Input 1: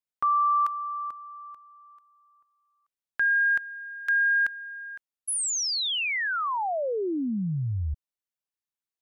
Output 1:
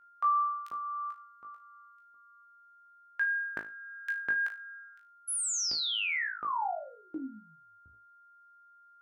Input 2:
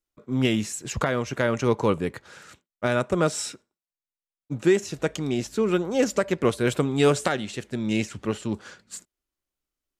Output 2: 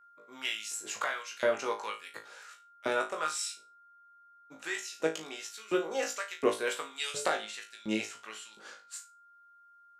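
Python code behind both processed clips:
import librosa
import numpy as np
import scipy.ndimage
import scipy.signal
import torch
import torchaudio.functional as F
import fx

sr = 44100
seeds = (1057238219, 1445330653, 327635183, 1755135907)

y = fx.filter_lfo_highpass(x, sr, shape='saw_up', hz=1.4, low_hz=300.0, high_hz=3600.0, q=0.97)
y = y + 10.0 ** (-53.0 / 20.0) * np.sin(2.0 * np.pi * 1400.0 * np.arange(len(y)) / sr)
y = fx.room_flutter(y, sr, wall_m=3.2, rt60_s=0.27)
y = y * 10.0 ** (-6.5 / 20.0)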